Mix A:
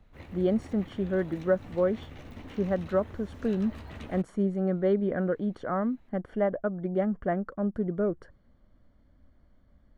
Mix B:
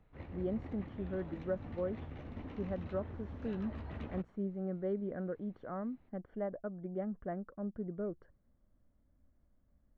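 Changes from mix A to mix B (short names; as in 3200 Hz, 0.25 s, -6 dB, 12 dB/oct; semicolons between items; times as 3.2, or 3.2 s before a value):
speech -10.0 dB; master: add tape spacing loss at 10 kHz 29 dB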